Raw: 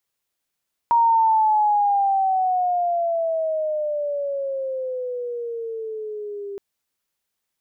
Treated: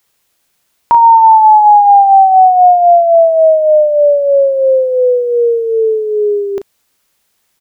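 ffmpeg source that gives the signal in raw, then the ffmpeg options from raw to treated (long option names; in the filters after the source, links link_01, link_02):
-f lavfi -i "aevalsrc='pow(10,(-13-16*t/5.67)/20)*sin(2*PI*942*5.67/(-15*log(2)/12)*(exp(-15*log(2)/12*t/5.67)-1))':duration=5.67:sample_rate=44100"
-filter_complex "[0:a]asplit=2[link_01][link_02];[link_02]acompressor=threshold=-27dB:ratio=6,volume=2dB[link_03];[link_01][link_03]amix=inputs=2:normalize=0,asplit=2[link_04][link_05];[link_05]adelay=36,volume=-9.5dB[link_06];[link_04][link_06]amix=inputs=2:normalize=0,alimiter=level_in=10.5dB:limit=-1dB:release=50:level=0:latency=1"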